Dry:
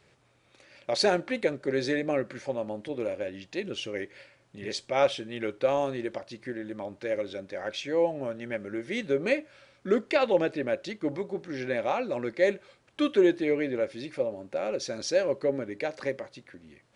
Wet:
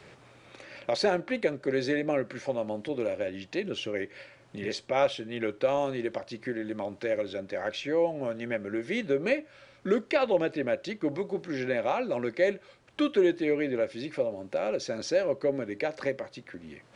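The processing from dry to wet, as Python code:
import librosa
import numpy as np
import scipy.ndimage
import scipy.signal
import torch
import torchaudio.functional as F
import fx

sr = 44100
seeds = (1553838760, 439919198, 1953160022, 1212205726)

y = fx.high_shelf(x, sr, hz=9100.0, db=-7.0)
y = fx.band_squash(y, sr, depth_pct=40)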